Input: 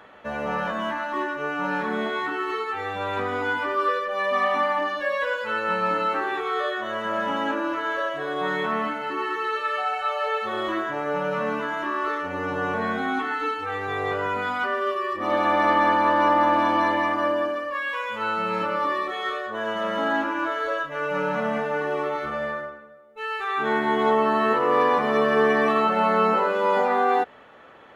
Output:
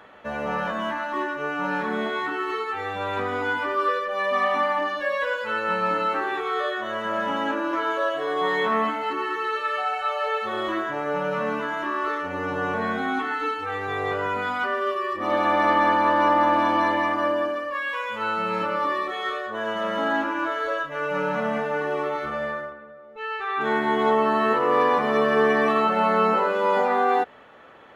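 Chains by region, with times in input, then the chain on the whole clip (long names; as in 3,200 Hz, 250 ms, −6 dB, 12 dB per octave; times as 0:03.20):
0:07.71–0:09.13: high-pass filter 210 Hz 6 dB per octave + double-tracking delay 18 ms −2 dB
0:22.72–0:23.61: upward compression, threshold −36 dBFS + high-frequency loss of the air 120 metres
whole clip: no processing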